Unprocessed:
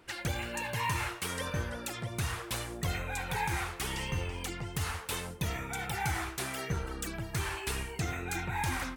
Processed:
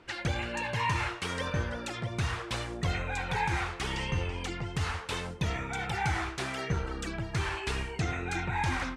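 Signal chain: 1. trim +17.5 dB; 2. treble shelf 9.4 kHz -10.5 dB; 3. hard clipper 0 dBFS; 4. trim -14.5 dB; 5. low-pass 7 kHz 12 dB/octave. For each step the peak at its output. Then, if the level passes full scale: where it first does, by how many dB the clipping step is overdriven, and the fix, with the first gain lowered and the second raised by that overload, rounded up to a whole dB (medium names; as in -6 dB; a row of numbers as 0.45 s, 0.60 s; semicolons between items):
-2.5 dBFS, -3.0 dBFS, -3.0 dBFS, -17.5 dBFS, -17.5 dBFS; nothing clips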